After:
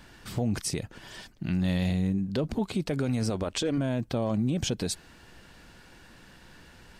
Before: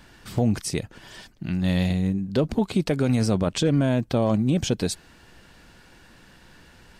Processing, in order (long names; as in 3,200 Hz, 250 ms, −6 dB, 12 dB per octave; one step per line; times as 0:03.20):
0:03.30–0:03.78: parametric band 150 Hz −12 dB 0.97 octaves
brickwall limiter −19 dBFS, peak gain reduction 6.5 dB
level −1 dB